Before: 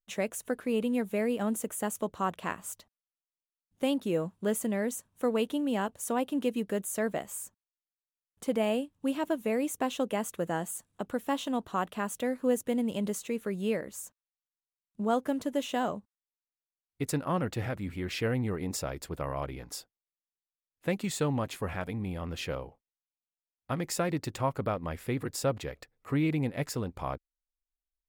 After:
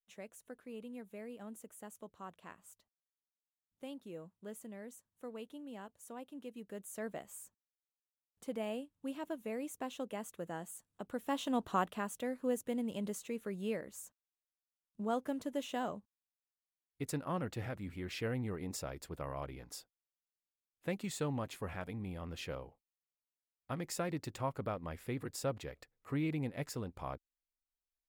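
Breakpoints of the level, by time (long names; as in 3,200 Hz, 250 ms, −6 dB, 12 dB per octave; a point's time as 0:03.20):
0:06.48 −18 dB
0:07.05 −11 dB
0:10.89 −11 dB
0:11.71 −0.5 dB
0:12.12 −7.5 dB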